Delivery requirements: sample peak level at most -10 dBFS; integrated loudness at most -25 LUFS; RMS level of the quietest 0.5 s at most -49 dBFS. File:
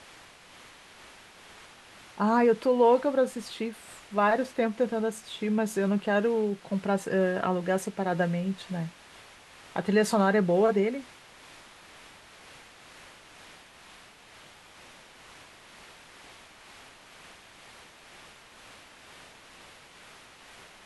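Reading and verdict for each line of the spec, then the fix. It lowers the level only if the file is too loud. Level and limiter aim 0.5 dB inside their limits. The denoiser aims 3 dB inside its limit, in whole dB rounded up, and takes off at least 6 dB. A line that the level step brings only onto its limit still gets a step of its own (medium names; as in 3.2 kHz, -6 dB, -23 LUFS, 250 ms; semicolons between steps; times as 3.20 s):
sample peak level -11.5 dBFS: pass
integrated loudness -27.0 LUFS: pass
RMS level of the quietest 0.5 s -52 dBFS: pass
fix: none needed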